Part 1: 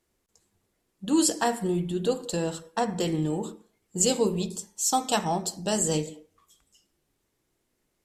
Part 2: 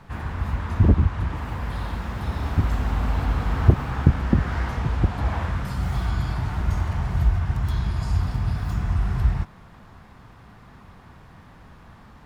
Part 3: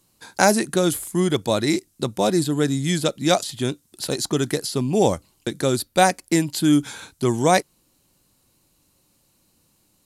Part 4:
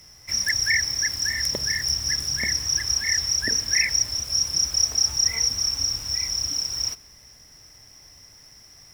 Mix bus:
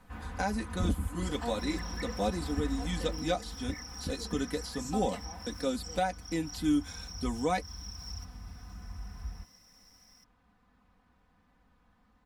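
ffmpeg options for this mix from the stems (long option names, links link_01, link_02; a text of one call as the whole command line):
ffmpeg -i stem1.wav -i stem2.wav -i stem3.wav -i stem4.wav -filter_complex "[0:a]tremolo=f=0.62:d=0.86,volume=-16.5dB[link_01];[1:a]volume=-12dB,afade=type=out:start_time=2.63:duration=0.61:silence=0.334965[link_02];[2:a]flanger=delay=4.2:depth=3.5:regen=-44:speed=0.36:shape=sinusoidal,volume=-9.5dB,asplit=2[link_03][link_04];[3:a]acompressor=threshold=-30dB:ratio=6,adelay=1300,volume=-13.5dB[link_05];[link_04]apad=whole_len=451514[link_06];[link_05][link_06]sidechaincompress=threshold=-38dB:ratio=8:attack=16:release=124[link_07];[link_01][link_02][link_03][link_07]amix=inputs=4:normalize=0,acrossover=split=4900[link_08][link_09];[link_09]acompressor=threshold=-47dB:ratio=4:attack=1:release=60[link_10];[link_08][link_10]amix=inputs=2:normalize=0,aecho=1:1:4:0.74,alimiter=limit=-19dB:level=0:latency=1:release=467" out.wav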